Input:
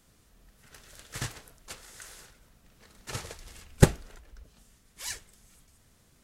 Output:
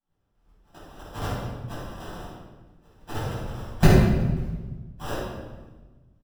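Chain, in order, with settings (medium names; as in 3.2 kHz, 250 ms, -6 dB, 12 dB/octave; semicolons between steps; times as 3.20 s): expander -47 dBFS; in parallel at -1 dB: compression, threshold -44 dBFS, peak gain reduction 30.5 dB; on the sum: valve stage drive 10 dB, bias 0.65; sample-rate reducer 2.2 kHz, jitter 0%; on a send: feedback delay 183 ms, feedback 32%, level -20 dB; on the sum: simulated room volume 810 m³, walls mixed, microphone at 8.4 m; trim -6.5 dB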